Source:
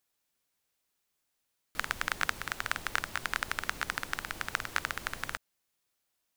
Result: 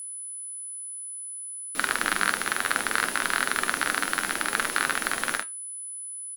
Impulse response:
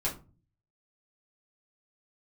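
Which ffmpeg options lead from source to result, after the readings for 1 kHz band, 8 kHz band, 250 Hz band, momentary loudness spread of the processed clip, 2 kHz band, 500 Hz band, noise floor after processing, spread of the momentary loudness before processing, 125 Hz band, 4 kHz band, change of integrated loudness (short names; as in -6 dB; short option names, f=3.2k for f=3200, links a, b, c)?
+8.5 dB, +15.5 dB, +12.0 dB, 9 LU, +8.5 dB, +11.0 dB, -38 dBFS, 5 LU, 0.0 dB, +8.0 dB, +7.5 dB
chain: -filter_complex "[0:a]asplit=2[a][b];[b]acrusher=bits=6:mix=0:aa=0.000001,volume=-3dB[c];[a][c]amix=inputs=2:normalize=0,aecho=1:1:46|76:0.668|0.141,acontrast=53,lowshelf=f=160:t=q:w=1.5:g=-14,acontrast=61,flanger=delay=7.1:depth=3.8:regen=73:speed=0.6:shape=sinusoidal,aeval=exprs='val(0)+0.0251*sin(2*PI*10000*n/s)':c=same,volume=-2.5dB" -ar 44100 -c:a aac -b:a 96k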